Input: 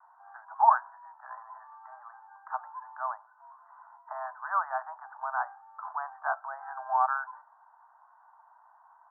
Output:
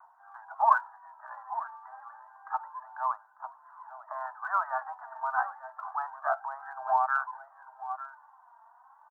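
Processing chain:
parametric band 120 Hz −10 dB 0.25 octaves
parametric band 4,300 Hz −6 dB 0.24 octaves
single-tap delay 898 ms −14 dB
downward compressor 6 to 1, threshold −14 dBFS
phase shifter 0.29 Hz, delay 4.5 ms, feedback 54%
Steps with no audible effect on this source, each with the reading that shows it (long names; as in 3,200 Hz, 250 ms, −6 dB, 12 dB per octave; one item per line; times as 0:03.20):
parametric band 120 Hz: nothing at its input below 540 Hz
parametric band 4,300 Hz: nothing at its input above 1,900 Hz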